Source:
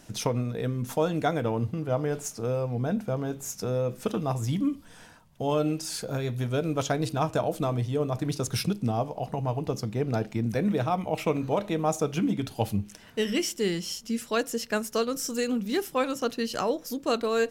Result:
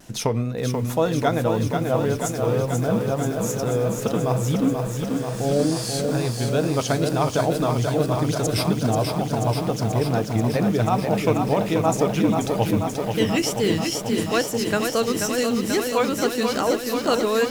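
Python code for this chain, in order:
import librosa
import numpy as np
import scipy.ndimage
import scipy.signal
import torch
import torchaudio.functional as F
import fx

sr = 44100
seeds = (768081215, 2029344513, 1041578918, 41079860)

y = fx.spec_repair(x, sr, seeds[0], start_s=5.04, length_s=0.86, low_hz=850.0, high_hz=11000.0, source='both')
y = fx.vibrato(y, sr, rate_hz=2.3, depth_cents=81.0)
y = fx.echo_crushed(y, sr, ms=485, feedback_pct=80, bits=8, wet_db=-5)
y = y * 10.0 ** (4.5 / 20.0)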